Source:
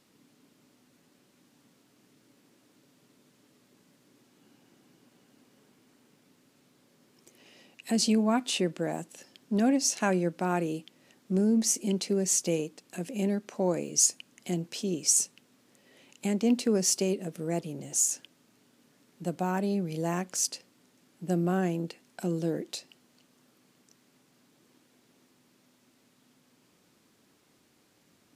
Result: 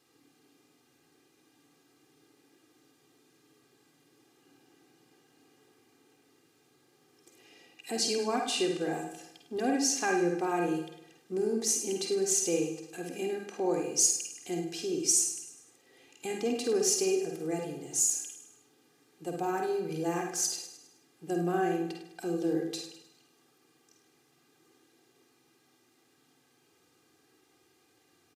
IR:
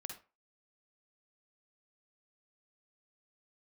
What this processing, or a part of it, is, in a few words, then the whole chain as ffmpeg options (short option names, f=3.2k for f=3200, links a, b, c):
microphone above a desk: -filter_complex "[0:a]highpass=80,aecho=1:1:2.5:0.82,aecho=1:1:103|206|309|412|515:0.282|0.127|0.0571|0.0257|0.0116[a];[1:a]atrim=start_sample=2205[b];[a][b]afir=irnorm=-1:irlink=0"